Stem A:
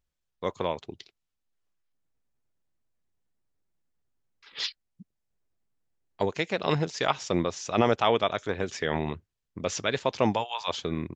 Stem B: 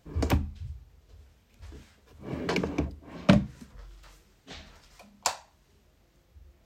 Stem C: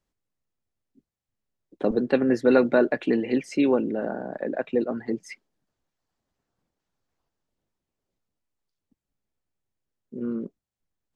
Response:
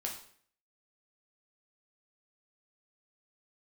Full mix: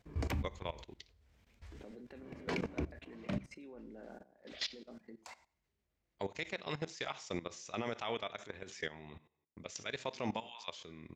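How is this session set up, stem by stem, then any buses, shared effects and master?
−10.5 dB, 0.00 s, send −9 dB, noise gate with hold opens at −42 dBFS; high-shelf EQ 3,400 Hz +8.5 dB
0:03.04 −4 dB → 0:03.55 −14.5 dB, 0.00 s, send −16 dB, high-shelf EQ 10,000 Hz −6.5 dB
−15.5 dB, 0.00 s, send −10 dB, downward compressor 4 to 1, threshold −24 dBFS, peak gain reduction 10 dB; brickwall limiter −19 dBFS, peak gain reduction 5.5 dB; automatic ducking −9 dB, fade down 0.85 s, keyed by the first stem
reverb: on, RT60 0.55 s, pre-delay 4 ms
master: parametric band 2,100 Hz +5 dB 0.5 octaves; output level in coarse steps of 17 dB; brickwall limiter −25.5 dBFS, peak gain reduction 7.5 dB

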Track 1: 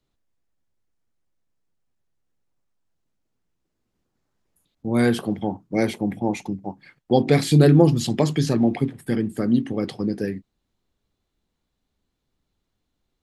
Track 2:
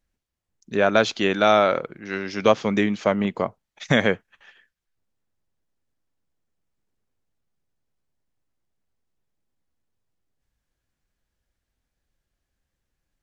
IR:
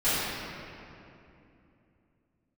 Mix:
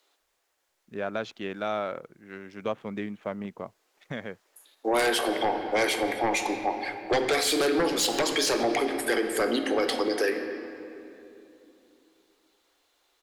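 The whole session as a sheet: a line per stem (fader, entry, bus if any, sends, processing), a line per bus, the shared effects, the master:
+0.5 dB, 0.00 s, send −21.5 dB, Bessel high-pass filter 620 Hz, order 8; downward compressor 2.5 to 1, threshold −30 dBFS, peak gain reduction 9 dB; sine wavefolder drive 9 dB, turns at −17 dBFS
−12.5 dB, 0.20 s, no send, adaptive Wiener filter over 9 samples; high-shelf EQ 4,600 Hz −7.5 dB; automatic ducking −7 dB, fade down 1.00 s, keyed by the first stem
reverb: on, RT60 2.8 s, pre-delay 3 ms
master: brickwall limiter −17.5 dBFS, peak gain reduction 6 dB

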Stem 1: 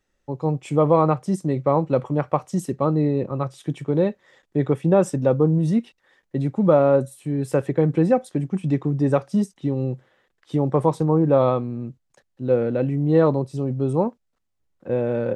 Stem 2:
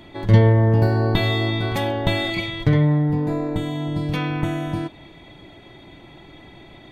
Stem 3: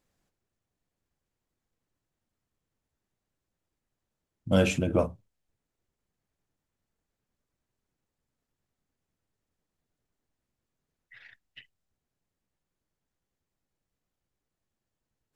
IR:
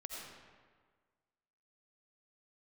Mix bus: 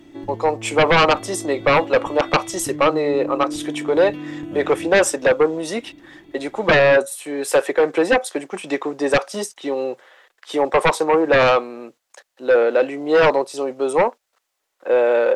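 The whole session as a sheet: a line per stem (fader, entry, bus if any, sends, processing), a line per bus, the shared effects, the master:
0.0 dB, 0.00 s, no send, Bessel high-pass filter 670 Hz, order 4; sine wavefolder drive 11 dB, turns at −9.5 dBFS
−10.0 dB, 0.00 s, no send, downward compressor 6 to 1, threshold −27 dBFS, peak gain reduction 18 dB; hollow resonant body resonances 300/2,800 Hz, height 16 dB
−14.0 dB, 0.00 s, no send, low-pass filter 4,200 Hz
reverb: not used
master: no processing

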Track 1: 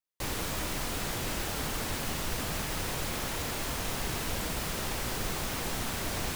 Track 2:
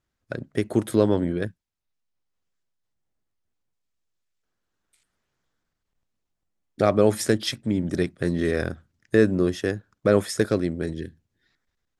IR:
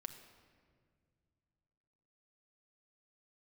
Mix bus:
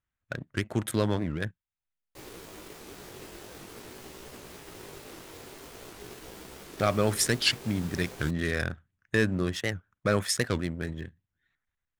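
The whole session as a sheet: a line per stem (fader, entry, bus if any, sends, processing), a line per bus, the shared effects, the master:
−12.0 dB, 1.95 s, no send, parametric band 390 Hz +10.5 dB 0.61 octaves; chorus effect 0.45 Hz, delay 15.5 ms, depth 6 ms
+1.5 dB, 0.00 s, no send, adaptive Wiener filter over 9 samples; parametric band 380 Hz −14.5 dB 2.6 octaves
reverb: not used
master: low-shelf EQ 63 Hz −8.5 dB; leveller curve on the samples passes 1; wow of a warped record 78 rpm, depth 250 cents

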